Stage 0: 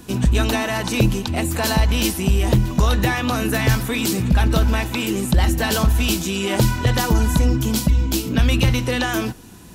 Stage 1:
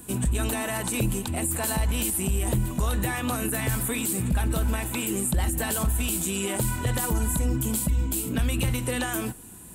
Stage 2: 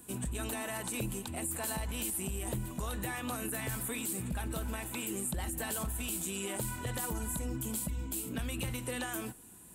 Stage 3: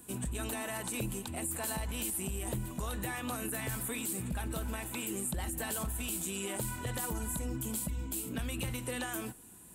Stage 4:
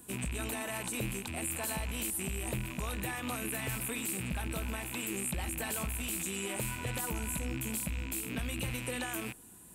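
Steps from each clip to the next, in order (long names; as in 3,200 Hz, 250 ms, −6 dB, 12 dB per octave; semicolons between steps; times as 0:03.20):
high shelf with overshoot 6,900 Hz +8 dB, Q 3; brickwall limiter −11 dBFS, peak gain reduction 9 dB; level −6 dB
low-shelf EQ 150 Hz −6 dB; level −8.5 dB
no processing that can be heard
loose part that buzzes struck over −46 dBFS, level −31 dBFS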